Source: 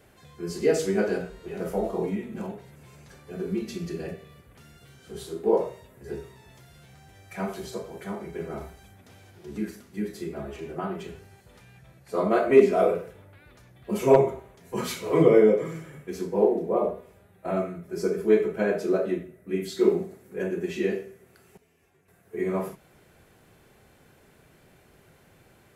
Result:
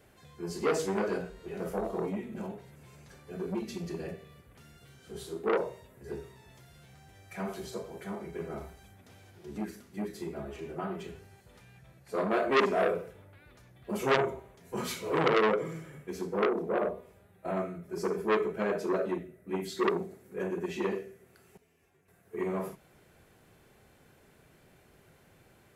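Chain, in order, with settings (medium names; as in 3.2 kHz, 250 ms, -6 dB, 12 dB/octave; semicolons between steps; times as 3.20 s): transformer saturation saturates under 1.8 kHz; trim -3.5 dB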